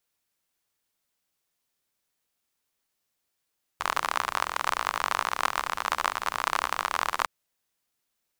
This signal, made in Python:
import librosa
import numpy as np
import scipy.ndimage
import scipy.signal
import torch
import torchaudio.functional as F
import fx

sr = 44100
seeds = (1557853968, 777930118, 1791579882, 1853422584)

y = fx.rain(sr, seeds[0], length_s=3.46, drops_per_s=47.0, hz=1100.0, bed_db=-20.5)